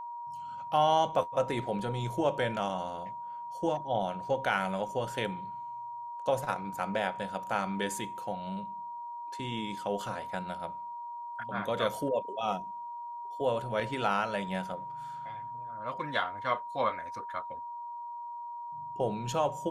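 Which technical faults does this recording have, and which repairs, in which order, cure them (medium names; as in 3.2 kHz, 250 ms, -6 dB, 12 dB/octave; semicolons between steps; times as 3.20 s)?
whine 950 Hz -38 dBFS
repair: band-stop 950 Hz, Q 30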